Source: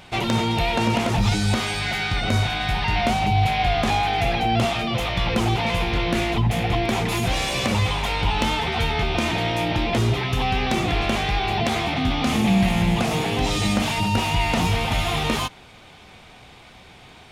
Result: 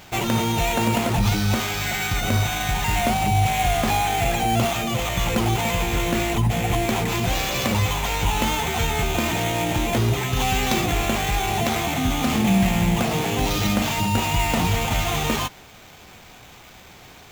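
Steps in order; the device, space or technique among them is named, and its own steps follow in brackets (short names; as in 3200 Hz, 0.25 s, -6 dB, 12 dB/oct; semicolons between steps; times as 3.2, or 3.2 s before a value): 10.36–10.86 high shelf 4100 Hz +8 dB; early 8-bit sampler (sample-rate reducer 9800 Hz, jitter 0%; bit-crush 8-bit)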